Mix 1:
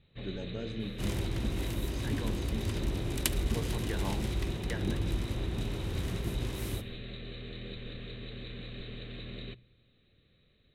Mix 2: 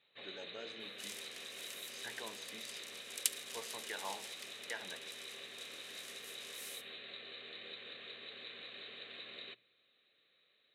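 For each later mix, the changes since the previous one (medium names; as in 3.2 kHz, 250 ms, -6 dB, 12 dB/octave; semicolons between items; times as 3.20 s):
second sound: add band-pass filter 7.8 kHz, Q 0.68; master: add high-pass 700 Hz 12 dB/octave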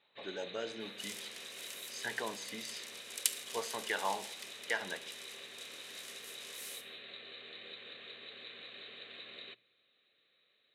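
speech +9.0 dB; second sound: send +9.5 dB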